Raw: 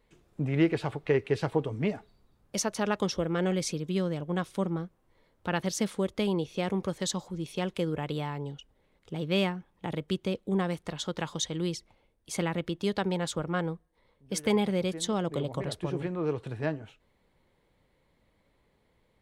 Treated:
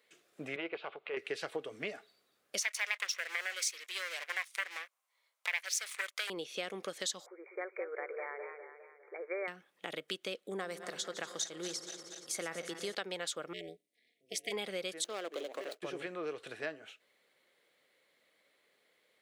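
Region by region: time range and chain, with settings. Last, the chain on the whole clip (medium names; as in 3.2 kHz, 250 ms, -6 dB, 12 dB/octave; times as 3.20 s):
0.56–1.17 s: transient shaper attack -11 dB, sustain -5 dB + upward compressor, threshold -40 dBFS + cabinet simulation 230–3200 Hz, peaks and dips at 290 Hz -8 dB, 950 Hz +5 dB, 1.8 kHz -9 dB
2.62–6.30 s: FFT filter 140 Hz 0 dB, 1 kHz +13 dB, 1.8 kHz -16 dB, 6.5 kHz 0 dB + waveshaping leveller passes 2 + resonant high-pass 2.1 kHz, resonance Q 3.4
7.26–9.48 s: brick-wall FIR band-pass 340–2400 Hz + modulated delay 203 ms, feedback 51%, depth 109 cents, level -8.5 dB
10.50–12.95 s: backward echo that repeats 118 ms, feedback 82%, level -13.5 dB + peaking EQ 2.9 kHz -8.5 dB 0.8 oct
13.53–14.52 s: brick-wall FIR band-stop 480–1900 Hz + AM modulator 250 Hz, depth 90%
15.04–15.82 s: median filter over 25 samples + high-pass 260 Hz 24 dB/octave + expander -49 dBFS
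whole clip: high-pass 680 Hz 12 dB/octave; peaking EQ 920 Hz -14 dB 0.54 oct; compression 2.5:1, threshold -42 dBFS; trim +5 dB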